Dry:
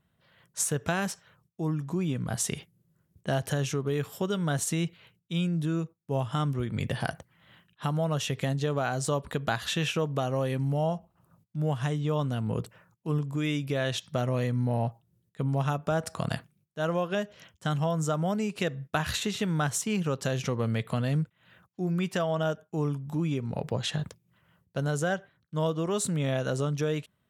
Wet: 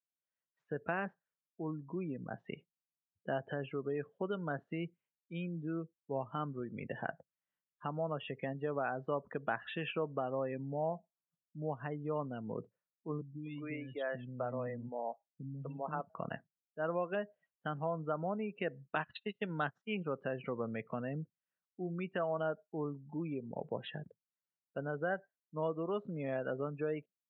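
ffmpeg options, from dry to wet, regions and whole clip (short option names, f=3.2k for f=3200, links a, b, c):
-filter_complex "[0:a]asettb=1/sr,asplit=3[a][b][c];[a]atrim=end=13.214[d];[b]atrim=start=13.21:end=16.1,asetpts=PTS-STARTPTS,afade=t=in:d=0.004:c=qsin,afade=t=out:st=2.886:d=0.004:c=qsin,equalizer=f=380:t=o:w=0.27:g=-5,acrossover=split=290|2800[e][f][g];[g]adelay=30[h];[f]adelay=250[i];[e][i][h]amix=inputs=3:normalize=0,atrim=end_sample=127449[j];[c]atrim=start=16.096[k];[d][j]acrossfade=d=0.004:c1=hsin:c2=qsin[l];[l][k]acrossfade=d=0.004:c1=qsin:c2=hsin,asettb=1/sr,asplit=3[m][n][o];[m]atrim=end=18.954[p];[n]atrim=start=18.95:end=19.95,asetpts=PTS-STARTPTS,afade=t=in:d=0.004:c=qsin,afade=t=out:st=0.996:d=0.004:c=qsin,agate=range=-22dB:threshold=-30dB:ratio=16:release=100:detection=peak,equalizer=f=5.3k:t=o:w=1.3:g=14.5[q];[o]atrim=start=19.946[r];[p][q]acrossfade=d=0.004:c1=hsin:c2=qsin[s];[s][r]acrossfade=d=0.004:c1=qsin:c2=hsin,lowpass=f=2.8k:w=0.5412,lowpass=f=2.8k:w=1.3066,afftdn=nr=32:nf=-38,highpass=240,volume=-6dB"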